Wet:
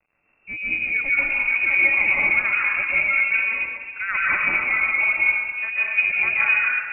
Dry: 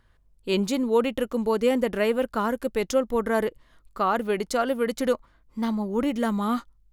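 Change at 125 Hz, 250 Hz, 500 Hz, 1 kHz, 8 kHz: n/a, -18.5 dB, -17.5 dB, -3.0 dB, under -40 dB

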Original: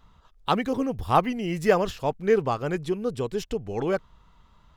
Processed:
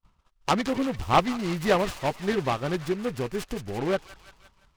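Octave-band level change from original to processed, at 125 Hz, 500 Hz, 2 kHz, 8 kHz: 0.0, -3.0, +1.5, +4.0 dB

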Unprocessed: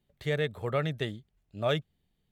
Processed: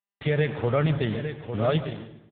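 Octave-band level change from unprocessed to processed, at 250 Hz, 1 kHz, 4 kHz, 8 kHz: +9.0 dB, +4.5 dB, +0.5 dB, n/a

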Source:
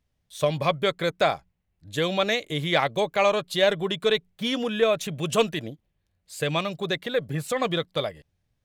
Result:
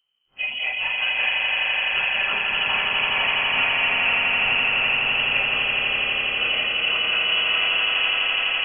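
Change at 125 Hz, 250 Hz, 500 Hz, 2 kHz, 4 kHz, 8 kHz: -12.0 dB, -12.5 dB, -12.5 dB, +12.5 dB, +10.0 dB, under -30 dB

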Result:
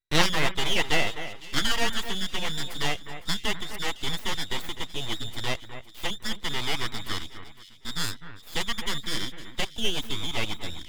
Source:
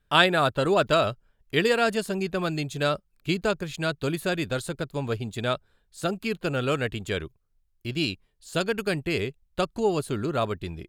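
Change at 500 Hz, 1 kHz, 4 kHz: -10.5, -5.0, +4.0 dB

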